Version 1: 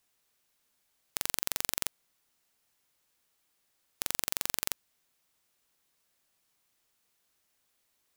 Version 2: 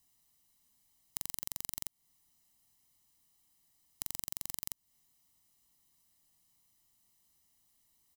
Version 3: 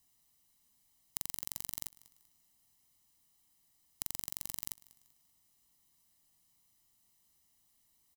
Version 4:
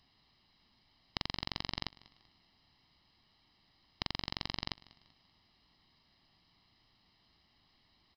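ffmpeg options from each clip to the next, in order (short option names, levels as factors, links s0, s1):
-af "equalizer=f=1600:t=o:w=2.8:g=-10.5,aecho=1:1:1:0.7,acompressor=threshold=0.0158:ratio=5,volume=1.41"
-af "aecho=1:1:193|386|579:0.0794|0.0302|0.0115"
-af "aresample=11025,aresample=44100,volume=3.98"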